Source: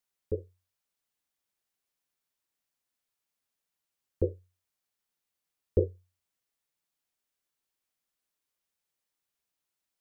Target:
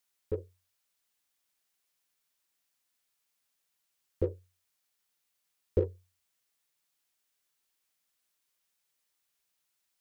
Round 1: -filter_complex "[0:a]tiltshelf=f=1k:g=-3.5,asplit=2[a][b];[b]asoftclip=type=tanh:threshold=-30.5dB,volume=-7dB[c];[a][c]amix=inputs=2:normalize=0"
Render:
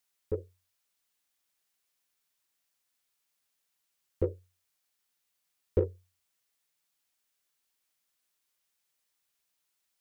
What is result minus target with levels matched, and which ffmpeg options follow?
soft clip: distortion -4 dB
-filter_complex "[0:a]tiltshelf=f=1k:g=-3.5,asplit=2[a][b];[b]asoftclip=type=tanh:threshold=-38dB,volume=-7dB[c];[a][c]amix=inputs=2:normalize=0"

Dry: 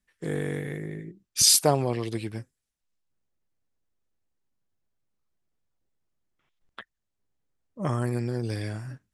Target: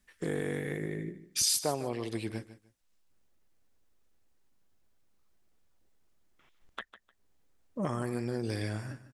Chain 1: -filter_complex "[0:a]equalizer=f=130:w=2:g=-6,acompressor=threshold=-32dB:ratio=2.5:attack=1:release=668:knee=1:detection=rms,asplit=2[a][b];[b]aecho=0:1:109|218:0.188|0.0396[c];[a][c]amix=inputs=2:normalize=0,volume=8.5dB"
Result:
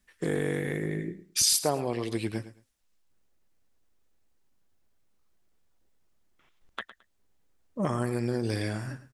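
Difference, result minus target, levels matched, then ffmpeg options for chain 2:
echo 43 ms early; compressor: peak gain reduction -4 dB
-filter_complex "[0:a]equalizer=f=130:w=2:g=-6,acompressor=threshold=-39dB:ratio=2.5:attack=1:release=668:knee=1:detection=rms,asplit=2[a][b];[b]aecho=0:1:152|304:0.188|0.0396[c];[a][c]amix=inputs=2:normalize=0,volume=8.5dB"

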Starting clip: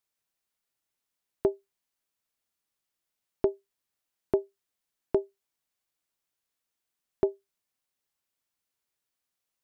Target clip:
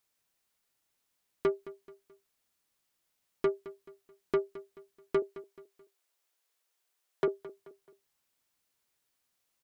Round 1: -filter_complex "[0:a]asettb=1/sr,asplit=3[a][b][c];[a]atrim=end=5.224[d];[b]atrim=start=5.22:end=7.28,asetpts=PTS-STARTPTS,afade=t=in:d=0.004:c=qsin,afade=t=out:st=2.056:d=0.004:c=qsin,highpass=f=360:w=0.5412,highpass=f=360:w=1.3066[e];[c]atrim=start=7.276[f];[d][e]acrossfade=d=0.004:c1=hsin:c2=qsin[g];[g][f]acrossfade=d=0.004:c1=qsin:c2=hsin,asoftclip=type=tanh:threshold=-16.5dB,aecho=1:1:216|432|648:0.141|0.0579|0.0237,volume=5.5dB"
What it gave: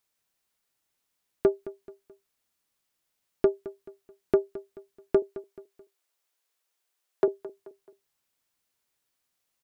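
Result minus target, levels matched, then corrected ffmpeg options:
soft clip: distortion -11 dB
-filter_complex "[0:a]asettb=1/sr,asplit=3[a][b][c];[a]atrim=end=5.224[d];[b]atrim=start=5.22:end=7.28,asetpts=PTS-STARTPTS,afade=t=in:d=0.004:c=qsin,afade=t=out:st=2.056:d=0.004:c=qsin,highpass=f=360:w=0.5412,highpass=f=360:w=1.3066[e];[c]atrim=start=7.276[f];[d][e]acrossfade=d=0.004:c1=hsin:c2=qsin[g];[g][f]acrossfade=d=0.004:c1=qsin:c2=hsin,asoftclip=type=tanh:threshold=-28dB,aecho=1:1:216|432|648:0.141|0.0579|0.0237,volume=5.5dB"

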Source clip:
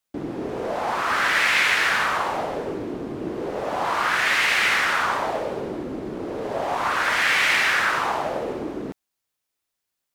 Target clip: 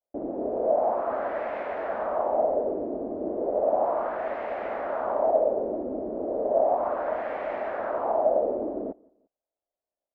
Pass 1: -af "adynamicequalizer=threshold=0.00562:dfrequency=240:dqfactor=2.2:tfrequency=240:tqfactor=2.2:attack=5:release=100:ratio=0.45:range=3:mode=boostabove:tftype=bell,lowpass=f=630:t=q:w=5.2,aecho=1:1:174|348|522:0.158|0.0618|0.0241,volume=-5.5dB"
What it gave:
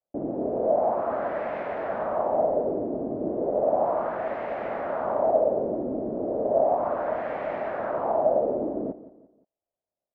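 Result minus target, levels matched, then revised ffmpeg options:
125 Hz band +8.0 dB; echo-to-direct +10.5 dB
-af "adynamicequalizer=threshold=0.00562:dfrequency=240:dqfactor=2.2:tfrequency=240:tqfactor=2.2:attack=5:release=100:ratio=0.45:range=3:mode=boostabove:tftype=bell,lowpass=f=630:t=q:w=5.2,equalizer=f=140:t=o:w=1:g=-13.5,aecho=1:1:174|348:0.0473|0.0185,volume=-5.5dB"

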